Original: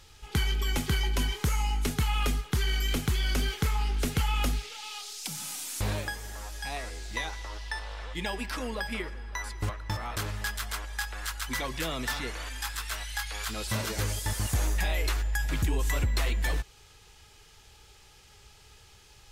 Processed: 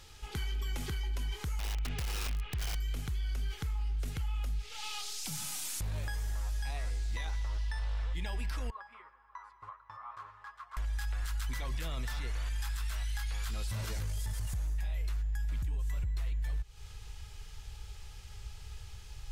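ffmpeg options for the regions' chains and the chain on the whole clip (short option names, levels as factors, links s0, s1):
-filter_complex "[0:a]asettb=1/sr,asplit=3[s0][s1][s2];[s0]atrim=end=1.594[s3];[s1]atrim=start=1.59:end=2.75,asetpts=PTS-STARTPTS,afade=t=in:d=0.004:c=qsin,afade=t=out:st=1.156:d=0.004:c=qsin,acompressor=threshold=0.0355:ratio=10:attack=3.2:release=140:knee=1:detection=peak,lowpass=f=2700:t=q:w=2.4,aeval=exprs='(mod(21.1*val(0)+1,2)-1)/21.1':c=same[s4];[s2]atrim=start=2.746[s5];[s3][s4]acrossfade=d=0.004:c1=hsin:c2=qsin[s6];[s6][s5]acrossfade=d=0.004:c1=qsin:c2=hsin,asettb=1/sr,asplit=3[s7][s8][s9];[s7]atrim=end=8.704[s10];[s8]atrim=start=8.7:end=10.77,asetpts=PTS-STARTPTS,afade=t=in:d=0.004:c=qsin,afade=t=out:st=2.066:d=0.004:c=qsin,bandpass=f=1100:t=q:w=8,aecho=1:1:7.4:0.43,atrim=end_sample=91287[s11];[s9]atrim=start=10.766[s12];[s10][s11]acrossfade=d=0.004:c1=hsin:c2=qsin[s13];[s13][s12]acrossfade=d=0.004:c1=qsin:c2=hsin,asubboost=boost=5.5:cutoff=110,acompressor=threshold=0.0447:ratio=10,alimiter=level_in=1.78:limit=0.0631:level=0:latency=1:release=11,volume=0.562"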